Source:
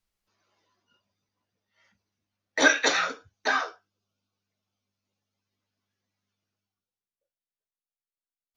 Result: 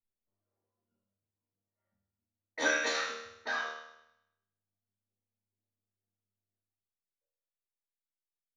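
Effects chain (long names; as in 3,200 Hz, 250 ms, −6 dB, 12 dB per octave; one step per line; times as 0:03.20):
low-pass that shuts in the quiet parts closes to 580 Hz, open at −25.5 dBFS
resonators tuned to a chord D#2 major, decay 0.83 s
level +8.5 dB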